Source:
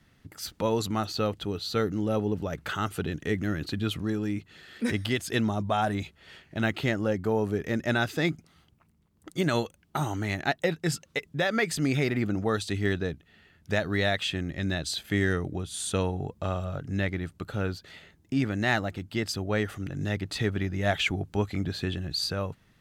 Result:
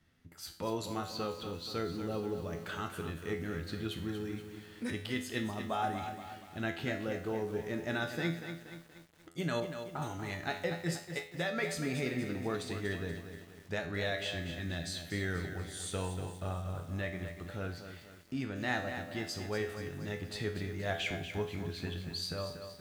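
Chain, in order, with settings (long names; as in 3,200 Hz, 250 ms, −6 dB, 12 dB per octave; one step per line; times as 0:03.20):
tuned comb filter 84 Hz, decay 0.48 s, harmonics all, mix 80%
0:09.60–0:10.02: low-pass filter 1,500 Hz 12 dB per octave
on a send at −16.5 dB: convolution reverb RT60 1.1 s, pre-delay 24 ms
on the sum: feedback echo at a low word length 238 ms, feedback 55%, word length 9 bits, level −8.5 dB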